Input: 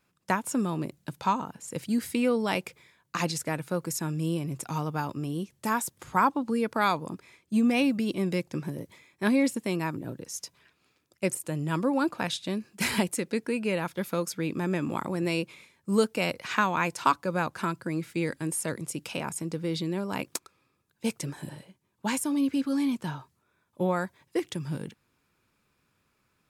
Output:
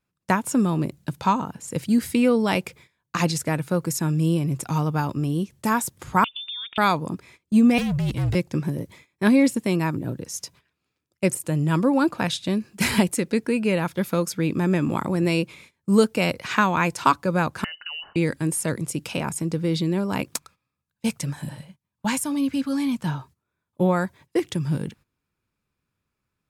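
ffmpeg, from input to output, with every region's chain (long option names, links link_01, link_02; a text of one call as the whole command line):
ffmpeg -i in.wav -filter_complex "[0:a]asettb=1/sr,asplit=3[link_01][link_02][link_03];[link_01]atrim=end=6.244[link_04];[link_02]atrim=start=6.24:end=6.78,asetpts=PTS-STARTPTS,afade=type=in:duration=0.004:curve=qsin,afade=type=out:start_time=0.536:duration=0.004:curve=qsin,lowpass=frequency=3200:width_type=q:width=0.5098,lowpass=frequency=3200:width_type=q:width=0.6013,lowpass=frequency=3200:width_type=q:width=0.9,lowpass=frequency=3200:width_type=q:width=2.563,afreqshift=-3800,acompressor=threshold=-34dB:ratio=16:attack=3.2:release=140:knee=1:detection=peak[link_05];[link_03]atrim=start=6.776[link_06];[link_04][link_05]acrossfade=duration=0.004:curve1=hsin:curve2=qsin[link_07];[link_07][link_06]acrossfade=duration=0.004:curve1=qsin:curve2=hsin,asettb=1/sr,asplit=3[link_08][link_09][link_10];[link_08]atrim=end=7.784[link_11];[link_09]atrim=start=7.78:end=8.35,asetpts=PTS-STARTPTS,afade=type=in:duration=0.004:curve=qsin,afade=type=out:start_time=0.566:duration=0.004:curve=qsin,equalizer=frequency=330:width=3.8:gain=-7.5,volume=30dB,asoftclip=hard,volume=-30dB,afreqshift=-61[link_12];[link_10]atrim=start=8.346[link_13];[link_11][link_12]acrossfade=duration=0.004:curve1=hsin:curve2=qsin[link_14];[link_14][link_13]acrossfade=duration=0.004:curve1=qsin:curve2=hsin,asettb=1/sr,asplit=3[link_15][link_16][link_17];[link_15]atrim=end=17.644[link_18];[link_16]atrim=start=17.64:end=18.16,asetpts=PTS-STARTPTS,afade=type=in:duration=0.004:curve=qsin,afade=type=out:start_time=0.516:duration=0.004:curve=qsin,equalizer=frequency=640:width_type=o:width=0.54:gain=-12,acompressor=threshold=-34dB:ratio=10:attack=3.2:release=140:knee=1:detection=peak,lowpass=frequency=2600:width_type=q:width=0.5098,lowpass=frequency=2600:width_type=q:width=0.6013,lowpass=frequency=2600:width_type=q:width=0.9,lowpass=frequency=2600:width_type=q:width=2.563,afreqshift=-3100[link_19];[link_17]atrim=start=18.156[link_20];[link_18][link_19]acrossfade=duration=0.004:curve1=hsin:curve2=qsin[link_21];[link_21][link_20]acrossfade=duration=0.004:curve1=qsin:curve2=hsin,asettb=1/sr,asplit=3[link_22][link_23][link_24];[link_22]atrim=end=20.354[link_25];[link_23]atrim=start=20.35:end=23.06,asetpts=PTS-STARTPTS,afade=type=in:duration=0.004:curve=qsin,afade=type=out:start_time=2.706:duration=0.004:curve=qsin,equalizer=frequency=370:width=2.2:gain=-11,bandreject=frequency=50:width_type=h:width=6,bandreject=frequency=100:width_type=h:width=6,bandreject=frequency=150:width_type=h:width=6[link_26];[link_24]atrim=start=23.056[link_27];[link_25][link_26]acrossfade=duration=0.004:curve1=hsin:curve2=qsin[link_28];[link_28][link_27]acrossfade=duration=0.004:curve1=qsin:curve2=hsin,agate=range=-15dB:threshold=-54dB:ratio=16:detection=peak,lowshelf=frequency=160:gain=9,volume=4.5dB" out.wav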